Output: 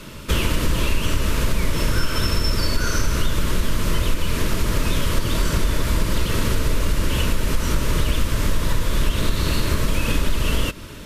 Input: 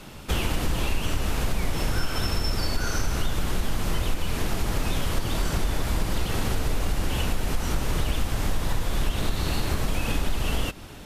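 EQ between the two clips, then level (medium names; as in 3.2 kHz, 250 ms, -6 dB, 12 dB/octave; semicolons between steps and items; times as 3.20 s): Butterworth band-stop 770 Hz, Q 3.4; +5.5 dB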